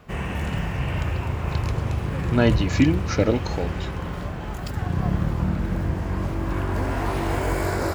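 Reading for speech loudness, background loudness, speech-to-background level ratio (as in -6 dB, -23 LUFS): -23.0 LUFS, -26.5 LUFS, 3.5 dB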